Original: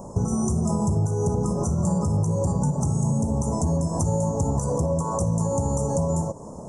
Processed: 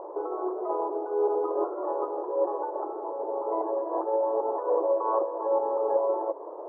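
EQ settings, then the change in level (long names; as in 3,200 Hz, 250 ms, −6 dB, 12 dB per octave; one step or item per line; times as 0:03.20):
linear-phase brick-wall band-pass 310–2,100 Hz
high-frequency loss of the air 260 metres
+3.5 dB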